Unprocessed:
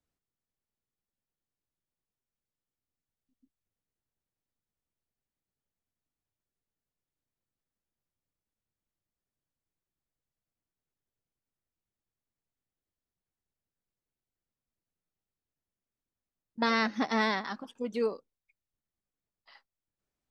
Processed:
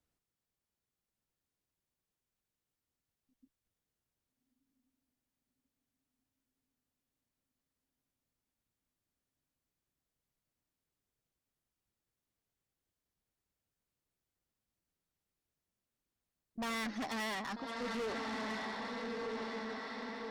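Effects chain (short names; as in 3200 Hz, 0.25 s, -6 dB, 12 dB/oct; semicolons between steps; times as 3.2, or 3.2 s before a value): diffused feedback echo 1.277 s, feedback 56%, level -7.5 dB; tube stage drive 38 dB, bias 0.2; gain +2 dB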